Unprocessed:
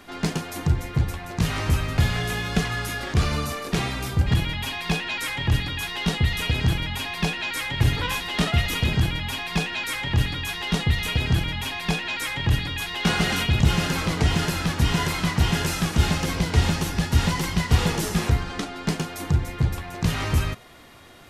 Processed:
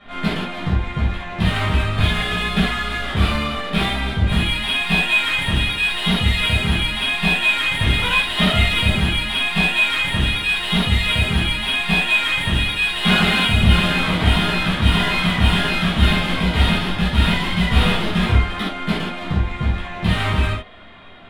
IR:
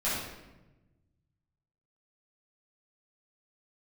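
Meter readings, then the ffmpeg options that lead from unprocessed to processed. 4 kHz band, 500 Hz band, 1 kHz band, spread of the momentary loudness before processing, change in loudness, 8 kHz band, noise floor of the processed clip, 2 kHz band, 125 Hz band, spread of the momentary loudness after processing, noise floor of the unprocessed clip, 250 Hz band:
+8.5 dB, +4.0 dB, +6.0 dB, 6 LU, +6.0 dB, −2.5 dB, −30 dBFS, +9.0 dB, +2.5 dB, 7 LU, −37 dBFS, +5.5 dB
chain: -filter_complex "[0:a]highshelf=frequency=4800:width_type=q:width=3:gain=-12,adynamicsmooth=sensitivity=6.5:basefreq=3100[link_01];[1:a]atrim=start_sample=2205,atrim=end_sample=3969[link_02];[link_01][link_02]afir=irnorm=-1:irlink=0,volume=-2.5dB"

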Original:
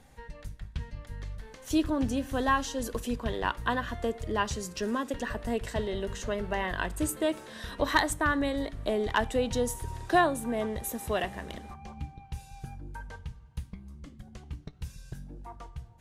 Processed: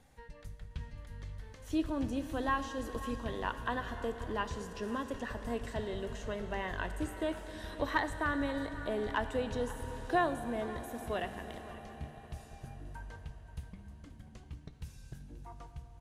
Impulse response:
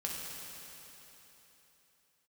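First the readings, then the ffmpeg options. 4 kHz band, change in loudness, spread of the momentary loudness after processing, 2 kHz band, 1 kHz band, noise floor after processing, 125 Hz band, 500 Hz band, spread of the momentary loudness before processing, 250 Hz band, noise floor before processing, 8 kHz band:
−8.5 dB, −6.5 dB, 17 LU, −6.0 dB, −6.0 dB, −54 dBFS, −5.0 dB, −6.0 dB, 18 LU, −5.5 dB, −52 dBFS, −14.0 dB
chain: -filter_complex "[0:a]acrossover=split=3100[link_01][link_02];[link_02]acompressor=threshold=-45dB:ratio=4:attack=1:release=60[link_03];[link_01][link_03]amix=inputs=2:normalize=0,aecho=1:1:531:0.15,asplit=2[link_04][link_05];[1:a]atrim=start_sample=2205,asetrate=24696,aresample=44100[link_06];[link_05][link_06]afir=irnorm=-1:irlink=0,volume=-13.5dB[link_07];[link_04][link_07]amix=inputs=2:normalize=0,volume=-8dB"

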